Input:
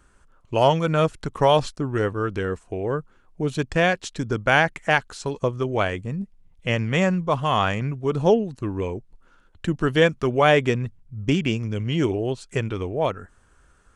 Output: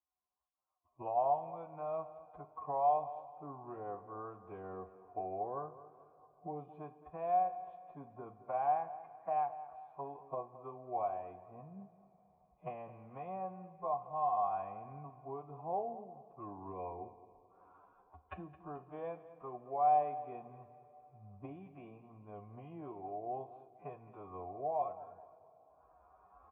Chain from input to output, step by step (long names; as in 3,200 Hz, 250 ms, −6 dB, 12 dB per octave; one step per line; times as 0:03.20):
camcorder AGC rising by 23 dB per second
noise gate −43 dBFS, range −17 dB
high-pass filter 62 Hz 12 dB per octave
dynamic equaliser 1,100 Hz, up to −5 dB, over −32 dBFS, Q 1.9
formant resonators in series a
phase-vocoder stretch with locked phases 1.9×
repeating echo 217 ms, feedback 38%, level −16 dB
on a send at −9 dB: convolution reverb, pre-delay 3 ms
on the sum: level −5 dB